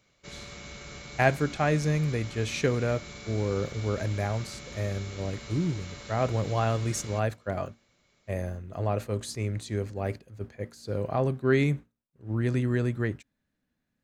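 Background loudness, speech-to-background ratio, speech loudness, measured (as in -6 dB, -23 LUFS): -43.0 LUFS, 13.0 dB, -30.0 LUFS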